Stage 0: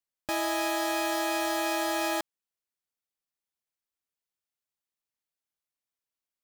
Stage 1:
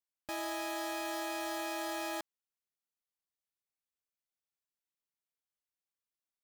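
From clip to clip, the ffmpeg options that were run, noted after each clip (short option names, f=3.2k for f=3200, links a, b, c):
-af "alimiter=limit=-23.5dB:level=0:latency=1:release=16,volume=-6.5dB"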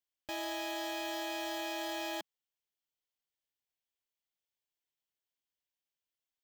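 -af "equalizer=f=200:t=o:w=0.33:g=-11,equalizer=f=1.25k:t=o:w=0.33:g=-8,equalizer=f=3.15k:t=o:w=0.33:g=6,equalizer=f=10k:t=o:w=0.33:g=-11"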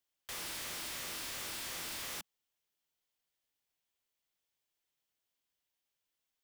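-af "aeval=exprs='(mod(133*val(0)+1,2)-1)/133':c=same,volume=5dB"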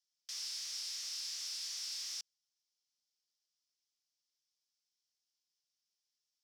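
-af "bandpass=f=5.3k:t=q:w=4.7:csg=0,volume=9.5dB"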